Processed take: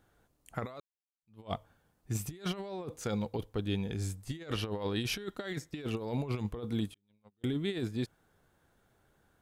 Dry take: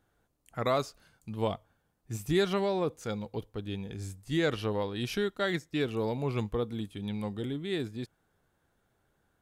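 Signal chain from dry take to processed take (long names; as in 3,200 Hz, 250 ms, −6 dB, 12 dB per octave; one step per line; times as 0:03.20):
0:06.94–0:07.44: noise gate −28 dBFS, range −46 dB
compressor whose output falls as the input rises −34 dBFS, ratio −0.5
0:00.80–0:01.52: fade in exponential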